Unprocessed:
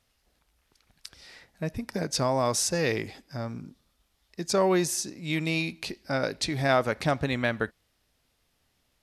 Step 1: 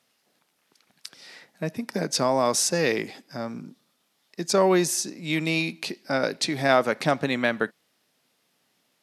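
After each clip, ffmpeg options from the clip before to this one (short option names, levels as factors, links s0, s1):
-af "highpass=f=160:w=0.5412,highpass=f=160:w=1.3066,volume=1.5"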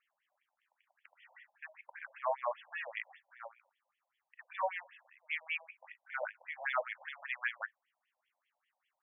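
-af "asubboost=boost=5:cutoff=190,asoftclip=type=tanh:threshold=0.422,afftfilt=real='re*between(b*sr/1024,710*pow(2500/710,0.5+0.5*sin(2*PI*5.1*pts/sr))/1.41,710*pow(2500/710,0.5+0.5*sin(2*PI*5.1*pts/sr))*1.41)':imag='im*between(b*sr/1024,710*pow(2500/710,0.5+0.5*sin(2*PI*5.1*pts/sr))/1.41,710*pow(2500/710,0.5+0.5*sin(2*PI*5.1*pts/sr))*1.41)':win_size=1024:overlap=0.75,volume=0.531"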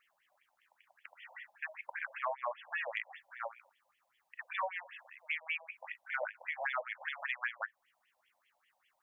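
-af "acompressor=threshold=0.00708:ratio=5,volume=2.66"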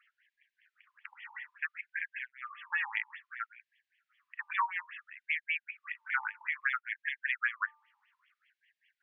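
-af "lowpass=2400,bandreject=f=297.7:t=h:w=4,bandreject=f=595.4:t=h:w=4,bandreject=f=893.1:t=h:w=4,bandreject=f=1190.8:t=h:w=4,afftfilt=real='re*gte(b*sr/1024,790*pow(1600/790,0.5+0.5*sin(2*PI*0.6*pts/sr)))':imag='im*gte(b*sr/1024,790*pow(1600/790,0.5+0.5*sin(2*PI*0.6*pts/sr)))':win_size=1024:overlap=0.75,volume=2.24"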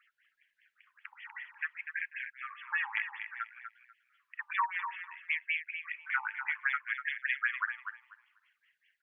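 -af "aecho=1:1:245|490|735:0.398|0.0756|0.0144"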